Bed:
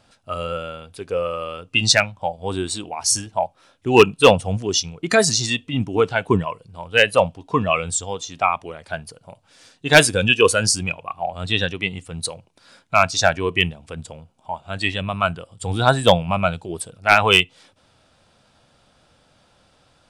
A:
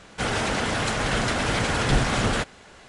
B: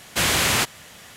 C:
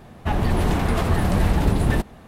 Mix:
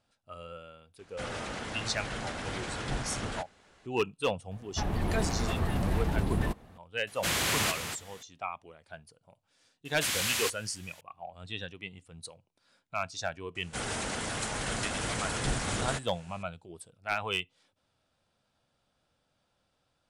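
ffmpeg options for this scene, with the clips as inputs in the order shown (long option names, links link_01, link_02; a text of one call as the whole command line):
ffmpeg -i bed.wav -i cue0.wav -i cue1.wav -i cue2.wav -filter_complex "[1:a]asplit=2[link_01][link_02];[2:a]asplit=2[link_03][link_04];[0:a]volume=-18dB[link_05];[link_03]aecho=1:1:234:0.376[link_06];[link_04]tiltshelf=frequency=1200:gain=-6[link_07];[link_02]equalizer=frequency=9000:width=0.91:gain=10.5[link_08];[link_01]atrim=end=2.88,asetpts=PTS-STARTPTS,volume=-13dB,afade=type=in:duration=0.004:curve=hsin,afade=type=out:start_time=2.876:duration=0.004:curve=hsin,adelay=990[link_09];[3:a]atrim=end=2.27,asetpts=PTS-STARTPTS,volume=-10dB,afade=type=in:duration=0.004:curve=hsin,afade=type=out:start_time=2.266:duration=0.004:curve=hsin,adelay=4510[link_10];[link_06]atrim=end=1.16,asetpts=PTS-STARTPTS,volume=-9dB,afade=type=in:duration=0.004:curve=hsin,afade=type=out:start_time=1.156:duration=0.004:curve=hsin,adelay=7070[link_11];[link_07]atrim=end=1.16,asetpts=PTS-STARTPTS,volume=-14.5dB,afade=type=in:duration=0.004:curve=hsin,afade=type=out:start_time=1.156:duration=0.004:curve=hsin,adelay=9850[link_12];[link_08]atrim=end=2.88,asetpts=PTS-STARTPTS,volume=-10.5dB,afade=type=in:duration=0.004:curve=hsin,afade=type=out:start_time=2.876:duration=0.004:curve=hsin,adelay=13550[link_13];[link_05][link_09][link_10][link_11][link_12][link_13]amix=inputs=6:normalize=0" out.wav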